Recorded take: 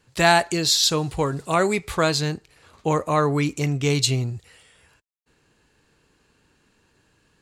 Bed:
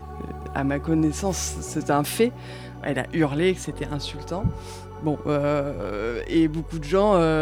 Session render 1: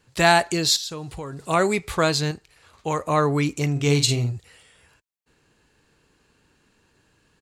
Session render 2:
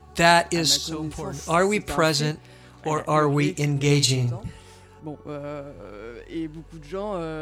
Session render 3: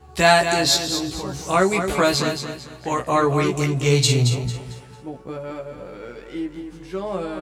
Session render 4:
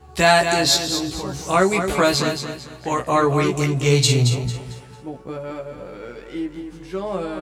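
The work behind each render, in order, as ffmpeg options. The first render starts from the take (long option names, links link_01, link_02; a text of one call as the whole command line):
ffmpeg -i in.wav -filter_complex "[0:a]asettb=1/sr,asplit=3[link_01][link_02][link_03];[link_01]atrim=end=0.764[link_04];[link_02]atrim=start=0.76:end=1.48,asetpts=PTS-STARTPTS,afade=type=in:duration=0.004:curve=qsin,afade=type=out:start_time=0.716:duration=0.004:curve=qsin,acompressor=threshold=-35dB:ratio=2.5:attack=3.2:release=140:knee=1:detection=peak[link_05];[link_03]atrim=start=1.476[link_06];[link_04][link_05]acrossfade=duration=0.004:curve1=hsin:curve2=qsin[link_07];[link_07][link_06]acrossfade=duration=0.004:curve1=qsin:curve2=hsin,asettb=1/sr,asplit=3[link_08][link_09][link_10];[link_08]atrim=end=2.314[link_11];[link_09]atrim=start=2.31:end=3.05,asetpts=PTS-STARTPTS,afade=type=in:duration=0.004:curve=qsin,afade=type=out:start_time=0.736:duration=0.004:curve=qsin,equalizer=frequency=240:width_type=o:width=2.7:gain=-6.5[link_12];[link_10]atrim=start=3.046[link_13];[link_11][link_12]acrossfade=duration=0.004:curve1=hsin:curve2=qsin[link_14];[link_14][link_13]acrossfade=duration=0.004:curve1=qsin:curve2=hsin,asplit=3[link_15][link_16][link_17];[link_15]afade=type=out:start_time=3.75:duration=0.02[link_18];[link_16]asplit=2[link_19][link_20];[link_20]adelay=49,volume=-7.5dB[link_21];[link_19][link_21]amix=inputs=2:normalize=0,afade=type=in:start_time=3.75:duration=0.02,afade=type=out:start_time=4.31:duration=0.02[link_22];[link_17]afade=type=in:start_time=4.31:duration=0.02[link_23];[link_18][link_22][link_23]amix=inputs=3:normalize=0" out.wav
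ffmpeg -i in.wav -i bed.wav -filter_complex "[1:a]volume=-11dB[link_01];[0:a][link_01]amix=inputs=2:normalize=0" out.wav
ffmpeg -i in.wav -filter_complex "[0:a]asplit=2[link_01][link_02];[link_02]adelay=16,volume=-3dB[link_03];[link_01][link_03]amix=inputs=2:normalize=0,asplit=2[link_04][link_05];[link_05]aecho=0:1:224|448|672|896:0.398|0.127|0.0408|0.013[link_06];[link_04][link_06]amix=inputs=2:normalize=0" out.wav
ffmpeg -i in.wav -af "volume=1dB,alimiter=limit=-2dB:level=0:latency=1" out.wav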